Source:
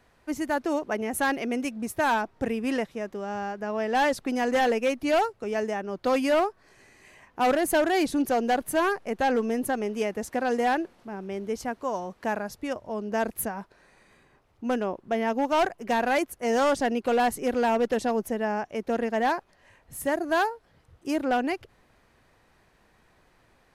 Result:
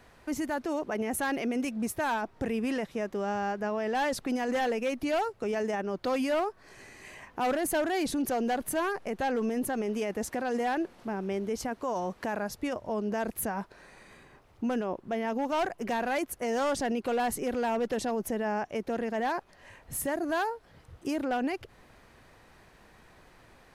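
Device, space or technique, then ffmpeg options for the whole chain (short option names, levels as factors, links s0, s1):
stacked limiters: -af "alimiter=limit=0.0631:level=0:latency=1:release=10,alimiter=level_in=1.78:limit=0.0631:level=0:latency=1:release=273,volume=0.562,volume=1.88"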